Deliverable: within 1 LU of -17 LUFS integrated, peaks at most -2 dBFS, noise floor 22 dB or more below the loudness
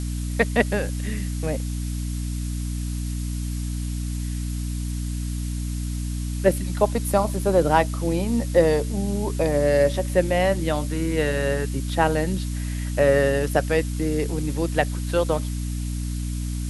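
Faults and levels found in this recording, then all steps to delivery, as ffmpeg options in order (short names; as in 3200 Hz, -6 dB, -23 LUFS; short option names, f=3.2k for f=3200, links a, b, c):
hum 60 Hz; harmonics up to 300 Hz; hum level -25 dBFS; noise floor -28 dBFS; noise floor target -46 dBFS; loudness -24.0 LUFS; peak -4.0 dBFS; loudness target -17.0 LUFS
-> -af "bandreject=f=60:t=h:w=6,bandreject=f=120:t=h:w=6,bandreject=f=180:t=h:w=6,bandreject=f=240:t=h:w=6,bandreject=f=300:t=h:w=6"
-af "afftdn=nr=18:nf=-28"
-af "volume=7dB,alimiter=limit=-2dB:level=0:latency=1"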